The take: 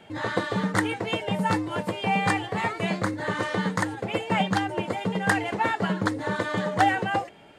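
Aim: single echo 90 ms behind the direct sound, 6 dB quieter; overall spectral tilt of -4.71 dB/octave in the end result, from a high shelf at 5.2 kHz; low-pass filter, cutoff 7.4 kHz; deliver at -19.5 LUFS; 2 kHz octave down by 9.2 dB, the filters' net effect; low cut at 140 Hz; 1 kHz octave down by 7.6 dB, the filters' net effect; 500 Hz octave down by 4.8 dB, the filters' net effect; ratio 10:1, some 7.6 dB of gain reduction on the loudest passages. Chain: high-pass 140 Hz; low-pass 7.4 kHz; peaking EQ 500 Hz -3.5 dB; peaking EQ 1 kHz -7 dB; peaking EQ 2 kHz -8.5 dB; treble shelf 5.2 kHz -4 dB; compression 10:1, threshold -31 dBFS; delay 90 ms -6 dB; trim +16 dB

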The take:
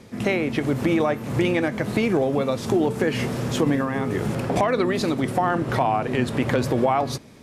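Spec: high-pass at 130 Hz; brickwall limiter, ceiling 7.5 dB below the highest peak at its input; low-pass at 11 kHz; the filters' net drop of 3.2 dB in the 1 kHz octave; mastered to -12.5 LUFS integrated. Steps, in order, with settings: high-pass 130 Hz; low-pass 11 kHz; peaking EQ 1 kHz -4.5 dB; trim +13.5 dB; peak limiter -2.5 dBFS

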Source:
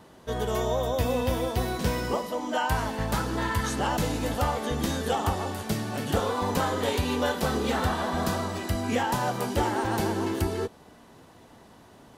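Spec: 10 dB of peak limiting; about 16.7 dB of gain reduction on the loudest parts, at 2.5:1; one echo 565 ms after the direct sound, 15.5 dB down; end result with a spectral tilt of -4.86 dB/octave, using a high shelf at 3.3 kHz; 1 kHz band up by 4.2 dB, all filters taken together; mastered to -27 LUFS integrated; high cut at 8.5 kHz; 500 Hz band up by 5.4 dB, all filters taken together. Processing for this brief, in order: low-pass 8.5 kHz; peaking EQ 500 Hz +5.5 dB; peaking EQ 1 kHz +3 dB; treble shelf 3.3 kHz +4.5 dB; compression 2.5:1, threshold -44 dBFS; peak limiter -34.5 dBFS; delay 565 ms -15.5 dB; trim +16.5 dB

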